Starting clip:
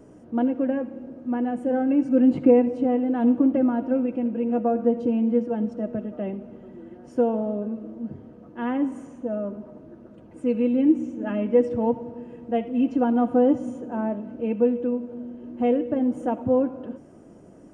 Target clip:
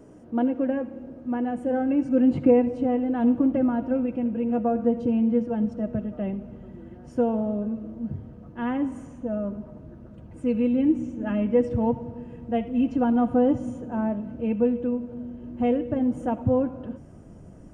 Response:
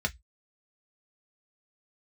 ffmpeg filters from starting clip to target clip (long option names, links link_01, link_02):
-af "asubboost=boost=5.5:cutoff=130"